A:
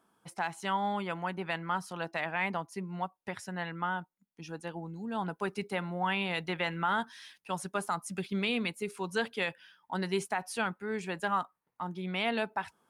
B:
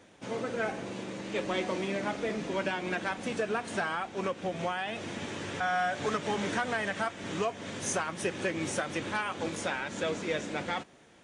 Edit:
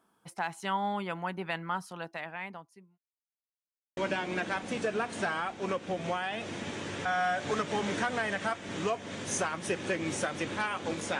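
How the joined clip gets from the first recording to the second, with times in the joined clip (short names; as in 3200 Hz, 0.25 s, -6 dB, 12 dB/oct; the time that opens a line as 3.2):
A
1.58–2.98 fade out linear
2.98–3.97 mute
3.97 switch to B from 2.52 s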